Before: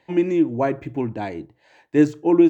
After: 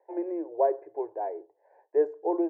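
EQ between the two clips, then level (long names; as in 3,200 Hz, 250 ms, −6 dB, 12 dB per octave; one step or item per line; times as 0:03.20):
elliptic band-pass filter 400–1,500 Hz, stop band 40 dB
phaser with its sweep stopped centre 550 Hz, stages 4
0.0 dB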